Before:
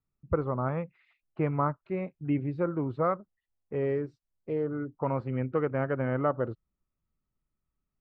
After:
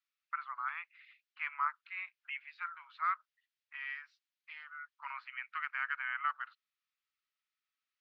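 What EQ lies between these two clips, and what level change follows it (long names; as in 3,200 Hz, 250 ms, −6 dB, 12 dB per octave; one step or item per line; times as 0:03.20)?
Bessel high-pass filter 2,300 Hz, order 8
high-frequency loss of the air 260 metres
spectral tilt +2 dB per octave
+11.5 dB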